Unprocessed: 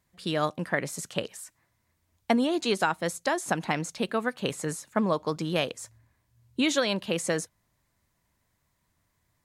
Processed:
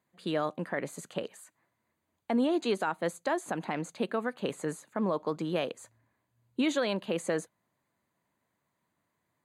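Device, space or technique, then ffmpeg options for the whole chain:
PA system with an anti-feedback notch: -af "highpass=200,asuperstop=centerf=5400:order=4:qfactor=5.5,highshelf=f=2300:g=-10,alimiter=limit=0.112:level=0:latency=1:release=49"

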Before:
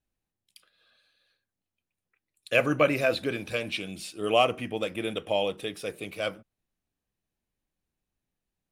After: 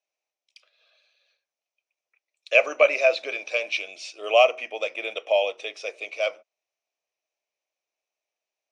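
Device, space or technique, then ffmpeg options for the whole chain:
phone speaker on a table: -af "highpass=f=470:w=0.5412,highpass=f=470:w=1.3066,equalizer=f=630:t=q:w=4:g=9,equalizer=f=1600:t=q:w=4:g=-6,equalizer=f=2400:t=q:w=4:g=9,equalizer=f=5900:t=q:w=4:g=10,lowpass=f=6500:w=0.5412,lowpass=f=6500:w=1.3066"

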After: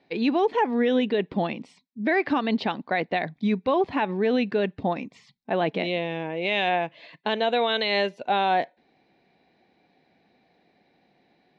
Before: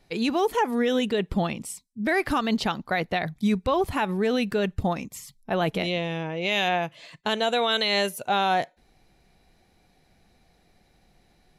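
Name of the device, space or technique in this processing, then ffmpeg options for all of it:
kitchen radio: -af "highpass=220,equalizer=f=270:t=q:w=4:g=4,equalizer=f=1300:t=q:w=4:g=-8,equalizer=f=3100:t=q:w=4:g=-4,lowpass=f=3800:w=0.5412,lowpass=f=3800:w=1.3066,volume=1.19"

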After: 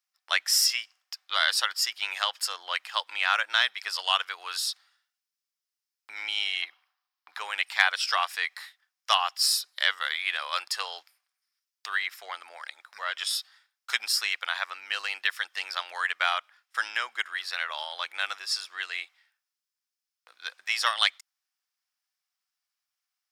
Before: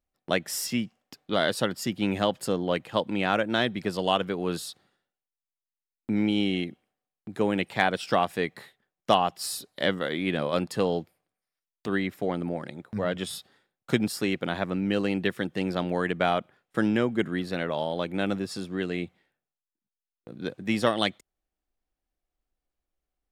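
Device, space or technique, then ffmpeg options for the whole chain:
headphones lying on a table: -filter_complex "[0:a]asettb=1/sr,asplit=3[s0][s1][s2];[s0]atrim=end=6.624[s3];[s1]atrim=start=6.62:end=7.4,asetpts=PTS-STARTPTS,afade=t=in:d=0.004:c=qsin,afade=t=out:st=0.776:d=0.004:c=qsin,equalizer=f=1000:t=o:w=1:g=11,equalizer=f=4000:t=o:w=1:g=4,equalizer=f=8000:t=o:w=1:g=-10[s4];[s2]atrim=start=7.396[s5];[s3][s4]acrossfade=d=0.004:c1=hsin:c2=qsin[s6];[s6][s5]acrossfade=d=0.004:c1=qsin:c2=hsin,highpass=f=1100:w=0.5412,highpass=f=1100:w=1.3066,equalizer=f=5200:t=o:w=0.38:g=9,volume=1.78"

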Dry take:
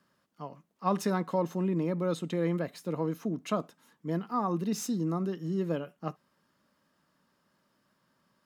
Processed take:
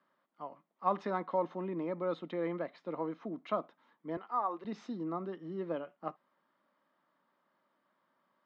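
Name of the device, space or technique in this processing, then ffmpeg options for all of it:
phone earpiece: -filter_complex "[0:a]highpass=370,equalizer=f=440:t=q:w=4:g=-6,equalizer=f=1600:t=q:w=4:g=-5,equalizer=f=2700:t=q:w=4:g=-9,lowpass=f=3100:w=0.5412,lowpass=f=3100:w=1.3066,asettb=1/sr,asplit=3[s0][s1][s2];[s0]atrim=end=4.174[s3];[s1]atrim=start=4.17:end=4.65,asetpts=PTS-STARTPTS,afade=t=in:d=0.004:c=qsin,afade=t=out:st=0.476:d=0.004:c=qsin,highpass=460[s4];[s2]atrim=start=4.646[s5];[s3][s4]acrossfade=d=0.004:c1=hsin:c2=qsin[s6];[s6][s5]acrossfade=d=0.004:c1=qsin:c2=hsin"

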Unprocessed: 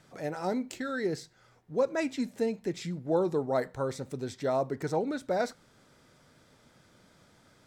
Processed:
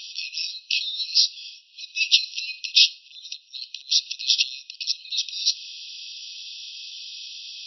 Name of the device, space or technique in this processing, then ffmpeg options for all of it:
loud club master: -af "acompressor=threshold=0.0251:ratio=3,asoftclip=type=hard:threshold=0.0596,alimiter=level_in=44.7:limit=0.891:release=50:level=0:latency=1,afftfilt=real='re*between(b*sr/4096,2500,5800)':imag='im*between(b*sr/4096,2500,5800)':win_size=4096:overlap=0.75"

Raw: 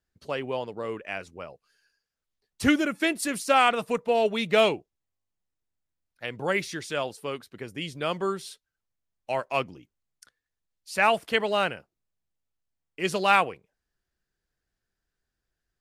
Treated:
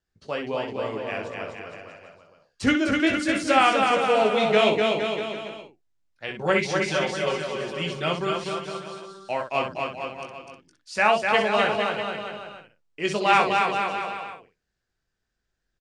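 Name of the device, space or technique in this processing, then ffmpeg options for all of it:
slapback doubling: -filter_complex "[0:a]lowpass=f=7800:w=0.5412,lowpass=f=7800:w=1.3066,asettb=1/sr,asplit=3[s0][s1][s2];[s0]atrim=end=6.284[s3];[s1]atrim=start=6.28:end=8.07,asetpts=PTS-STARTPTS,afade=t=in:d=0.004:c=qsin,afade=t=out:st=1.786:d=0.004:c=qsin,aecho=1:1:5.3:0.87,atrim=end_sample=78939[s4];[s2]atrim=start=8.066[s5];[s3][s4]acrossfade=d=0.004:c1=hsin:c2=qsin[s6];[s6][s5]acrossfade=d=0.004:c1=qsin:c2=hsin,asplit=3[s7][s8][s9];[s8]adelay=19,volume=0.501[s10];[s9]adelay=63,volume=0.398[s11];[s7][s10][s11]amix=inputs=3:normalize=0,asettb=1/sr,asplit=3[s12][s13][s14];[s12]atrim=end=2.724[s15];[s13]atrim=start=2.72:end=3.31,asetpts=PTS-STARTPTS,afade=t=in:d=0.004:c=qsin,afade=t=out:st=0.586:d=0.004:c=qsin,highshelf=f=8700:g=-10[s16];[s14]atrim=start=3.306[s17];[s15][s16]acrossfade=d=0.004:c1=hsin:c2=qsin[s18];[s18][s17]acrossfade=d=0.004:c1=qsin:c2=hsin,aecho=1:1:250|462.5|643.1|796.7|927.2:0.631|0.398|0.251|0.158|0.1"

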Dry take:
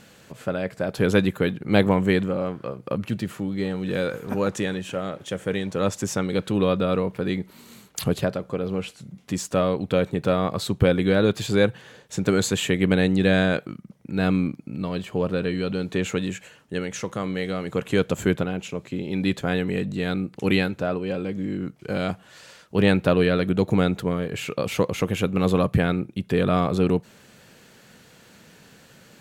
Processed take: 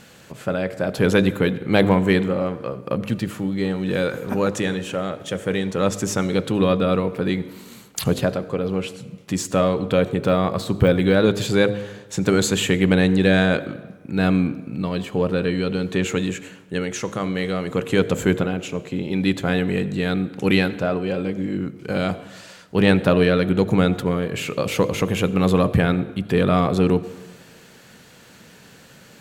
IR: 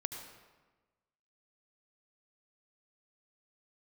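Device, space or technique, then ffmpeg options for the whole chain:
saturated reverb return: -filter_complex "[0:a]asettb=1/sr,asplit=3[s0][s1][s2];[s0]atrim=end=10.074[s3];[s1]atrim=start=10.07:end=11.14,asetpts=PTS-STARTPTS,afade=t=in:d=0.004:c=qsin,afade=t=out:st=1.066:d=0.004:c=qsin,deesser=0.75[s4];[s2]atrim=start=11.136[s5];[s3][s4]acrossfade=d=0.004:c1=hsin:c2=qsin[s6];[s6][s5]acrossfade=d=0.004:c1=qsin:c2=hsin,bandreject=f=51.25:t=h:w=4,bandreject=f=102.5:t=h:w=4,bandreject=f=153.75:t=h:w=4,bandreject=f=205:t=h:w=4,bandreject=f=256.25:t=h:w=4,bandreject=f=307.5:t=h:w=4,bandreject=f=358.75:t=h:w=4,bandreject=f=410:t=h:w=4,bandreject=f=461.25:t=h:w=4,bandreject=f=512.5:t=h:w=4,bandreject=f=563.75:t=h:w=4,bandreject=f=615:t=h:w=4,bandreject=f=666.25:t=h:w=4,bandreject=f=717.5:t=h:w=4,asplit=2[s7][s8];[1:a]atrim=start_sample=2205[s9];[s8][s9]afir=irnorm=-1:irlink=0,asoftclip=type=tanh:threshold=0.178,volume=0.355[s10];[s7][s10]amix=inputs=2:normalize=0,volume=1.19"

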